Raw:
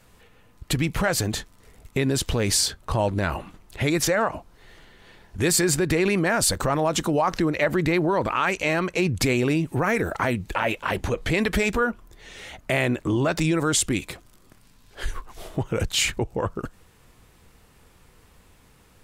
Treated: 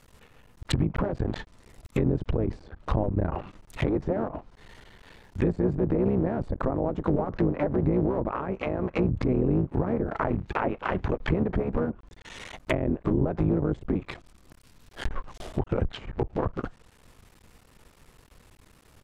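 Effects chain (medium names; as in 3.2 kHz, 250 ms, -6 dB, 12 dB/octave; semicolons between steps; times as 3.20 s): cycle switcher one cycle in 3, muted; low-pass that closes with the level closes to 530 Hz, closed at -20 dBFS; harmony voices -12 st -8 dB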